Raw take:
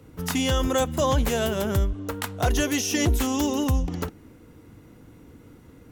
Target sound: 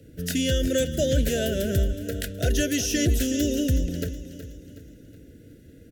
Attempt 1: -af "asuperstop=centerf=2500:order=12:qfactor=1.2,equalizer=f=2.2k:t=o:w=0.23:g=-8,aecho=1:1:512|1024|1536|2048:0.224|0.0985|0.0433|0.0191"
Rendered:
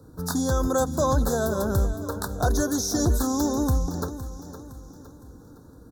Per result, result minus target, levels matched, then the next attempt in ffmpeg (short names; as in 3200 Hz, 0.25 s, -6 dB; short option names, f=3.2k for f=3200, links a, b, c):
1000 Hz band +16.5 dB; echo 0.142 s late
-af "asuperstop=centerf=990:order=12:qfactor=1.2,equalizer=f=2.2k:t=o:w=0.23:g=-8,aecho=1:1:512|1024|1536|2048:0.224|0.0985|0.0433|0.0191"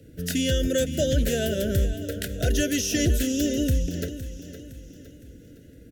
echo 0.142 s late
-af "asuperstop=centerf=990:order=12:qfactor=1.2,equalizer=f=2.2k:t=o:w=0.23:g=-8,aecho=1:1:370|740|1110|1480:0.224|0.0985|0.0433|0.0191"